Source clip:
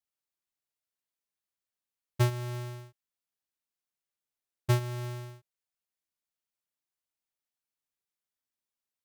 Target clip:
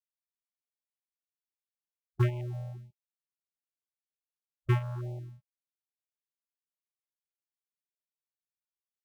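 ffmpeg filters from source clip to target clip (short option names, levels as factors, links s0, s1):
-af "afwtdn=0.0112,afftfilt=real='re*(1-between(b*sr/1024,280*pow(1500/280,0.5+0.5*sin(2*PI*1.8*pts/sr))/1.41,280*pow(1500/280,0.5+0.5*sin(2*PI*1.8*pts/sr))*1.41))':imag='im*(1-between(b*sr/1024,280*pow(1500/280,0.5+0.5*sin(2*PI*1.8*pts/sr))/1.41,280*pow(1500/280,0.5+0.5*sin(2*PI*1.8*pts/sr))*1.41))':win_size=1024:overlap=0.75"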